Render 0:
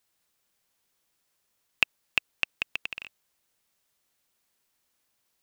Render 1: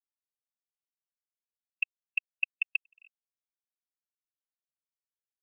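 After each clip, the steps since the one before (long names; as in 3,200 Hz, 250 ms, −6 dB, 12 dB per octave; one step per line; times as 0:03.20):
output level in coarse steps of 16 dB
every bin expanded away from the loudest bin 2.5 to 1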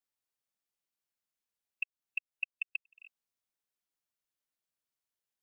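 downward compressor, threshold −37 dBFS, peak gain reduction 13 dB
level +3.5 dB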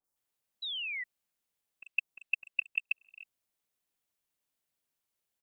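three-band delay without the direct sound lows, highs, mids 40/160 ms, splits 1,400/5,100 Hz
sound drawn into the spectrogram fall, 0:00.62–0:01.04, 1,900–4,000 Hz −43 dBFS
level +6 dB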